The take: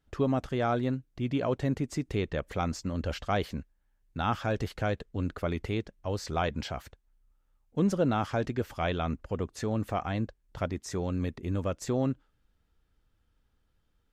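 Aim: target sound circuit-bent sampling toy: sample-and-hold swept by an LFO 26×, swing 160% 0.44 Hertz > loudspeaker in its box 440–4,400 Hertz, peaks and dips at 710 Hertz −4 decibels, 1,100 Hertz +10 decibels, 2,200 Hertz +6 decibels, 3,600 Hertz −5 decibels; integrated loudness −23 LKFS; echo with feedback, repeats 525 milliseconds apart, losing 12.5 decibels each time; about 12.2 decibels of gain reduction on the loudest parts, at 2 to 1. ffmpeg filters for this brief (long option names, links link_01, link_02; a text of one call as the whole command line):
ffmpeg -i in.wav -af "acompressor=threshold=-45dB:ratio=2,aecho=1:1:525|1050|1575:0.237|0.0569|0.0137,acrusher=samples=26:mix=1:aa=0.000001:lfo=1:lforange=41.6:lforate=0.44,highpass=440,equalizer=frequency=710:width_type=q:width=4:gain=-4,equalizer=frequency=1100:width_type=q:width=4:gain=10,equalizer=frequency=2200:width_type=q:width=4:gain=6,equalizer=frequency=3600:width_type=q:width=4:gain=-5,lowpass=frequency=4400:width=0.5412,lowpass=frequency=4400:width=1.3066,volume=22dB" out.wav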